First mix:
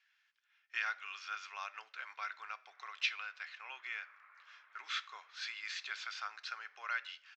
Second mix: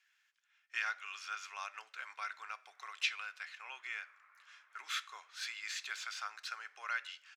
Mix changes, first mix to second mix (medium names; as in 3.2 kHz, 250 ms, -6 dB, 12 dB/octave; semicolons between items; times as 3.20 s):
background -3.5 dB; master: remove low-pass 5.5 kHz 24 dB/octave